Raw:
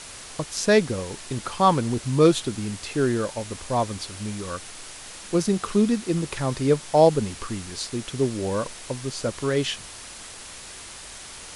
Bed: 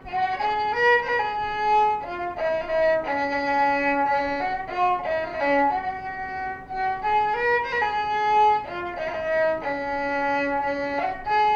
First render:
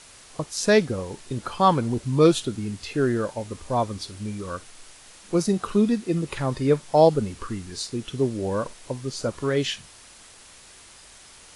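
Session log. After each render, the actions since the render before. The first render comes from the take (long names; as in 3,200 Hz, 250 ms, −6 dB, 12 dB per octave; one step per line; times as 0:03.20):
noise reduction from a noise print 8 dB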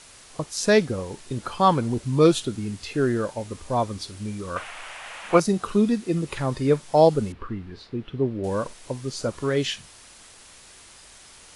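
0:04.56–0:05.40: flat-topped bell 1,300 Hz +16 dB 2.8 octaves
0:07.32–0:08.44: high-frequency loss of the air 390 metres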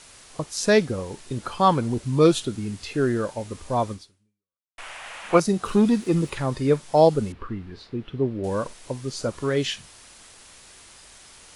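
0:03.92–0:04.78: fade out exponential
0:05.65–0:06.30: leveller curve on the samples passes 1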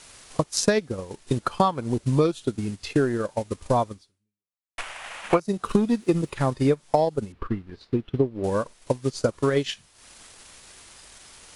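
transient designer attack +9 dB, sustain −10 dB
downward compressor 16 to 1, threshold −16 dBFS, peak gain reduction 14 dB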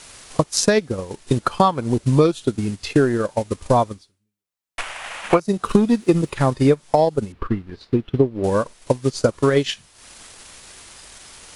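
level +5.5 dB
brickwall limiter −2 dBFS, peak gain reduction 2.5 dB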